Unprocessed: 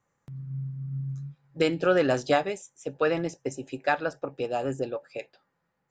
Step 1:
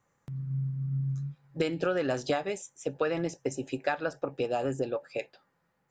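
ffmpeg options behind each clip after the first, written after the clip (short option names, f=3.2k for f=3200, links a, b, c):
-af "acompressor=threshold=-28dB:ratio=6,volume=2.5dB"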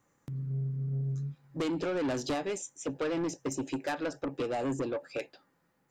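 -af "equalizer=f=290:w=2.2:g=8.5,asoftclip=type=tanh:threshold=-27.5dB,highshelf=f=5.4k:g=6"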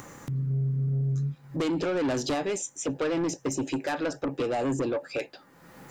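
-af "acompressor=mode=upward:threshold=-37dB:ratio=2.5,alimiter=level_in=6.5dB:limit=-24dB:level=0:latency=1:release=10,volume=-6.5dB,volume=7dB"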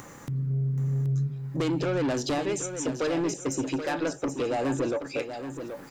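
-af "aecho=1:1:778|1556|2334:0.355|0.106|0.0319"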